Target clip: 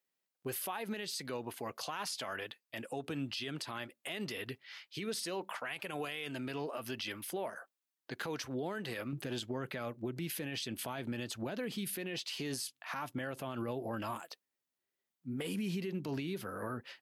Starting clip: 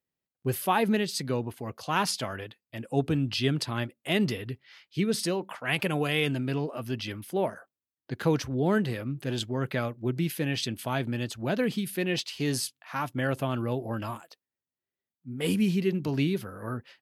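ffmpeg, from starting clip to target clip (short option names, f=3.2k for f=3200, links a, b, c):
-af "asetnsamples=n=441:p=0,asendcmd='9.13 highpass f 260',highpass=f=680:p=1,acompressor=threshold=-36dB:ratio=3,alimiter=level_in=8.5dB:limit=-24dB:level=0:latency=1:release=48,volume=-8.5dB,volume=3dB"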